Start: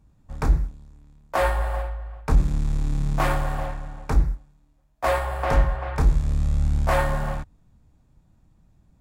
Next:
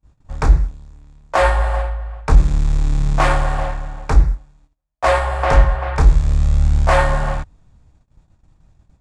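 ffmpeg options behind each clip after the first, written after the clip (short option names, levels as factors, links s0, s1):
-af "lowpass=f=8800:w=0.5412,lowpass=f=8800:w=1.3066,equalizer=f=220:w=1:g=-6,agate=range=0.0631:threshold=0.00126:ratio=16:detection=peak,volume=2.51"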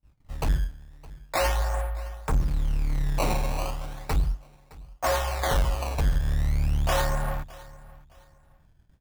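-af "aresample=16000,asoftclip=type=tanh:threshold=0.316,aresample=44100,acrusher=samples=15:mix=1:aa=0.000001:lfo=1:lforange=24:lforate=0.37,aecho=1:1:614|1228:0.0891|0.0258,volume=0.422"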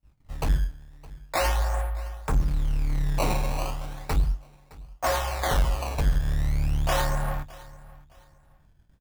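-filter_complex "[0:a]asplit=2[s0][s1];[s1]adelay=21,volume=0.224[s2];[s0][s2]amix=inputs=2:normalize=0"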